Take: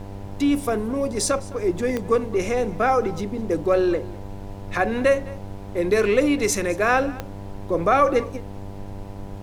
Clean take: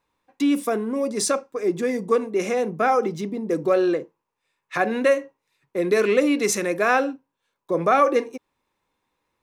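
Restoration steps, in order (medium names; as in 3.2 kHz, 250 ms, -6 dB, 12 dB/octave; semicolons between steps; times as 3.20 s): de-click; de-hum 98.9 Hz, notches 10; noise print and reduce 30 dB; inverse comb 209 ms -20.5 dB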